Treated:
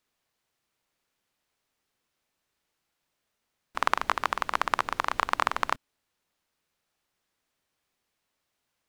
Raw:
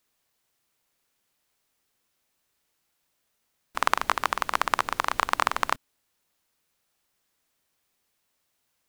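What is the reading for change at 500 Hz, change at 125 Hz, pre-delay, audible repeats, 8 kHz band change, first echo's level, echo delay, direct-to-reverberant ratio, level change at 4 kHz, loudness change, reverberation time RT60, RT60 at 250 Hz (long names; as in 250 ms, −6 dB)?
−1.5 dB, −1.5 dB, no reverb audible, no echo audible, −6.0 dB, no echo audible, no echo audible, no reverb audible, −3.0 dB, −2.0 dB, no reverb audible, no reverb audible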